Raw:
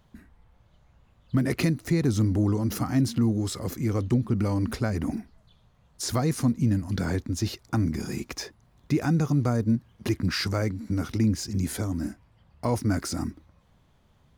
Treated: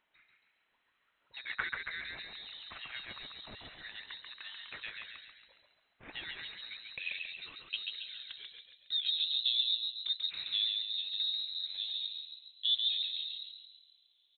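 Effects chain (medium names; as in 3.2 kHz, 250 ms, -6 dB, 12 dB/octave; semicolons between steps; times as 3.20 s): band-pass sweep 2.4 kHz -> 510 Hz, 6.17–9.09 s; frequency-shifting echo 138 ms, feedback 50%, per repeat -52 Hz, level -3.5 dB; frequency inversion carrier 4 kHz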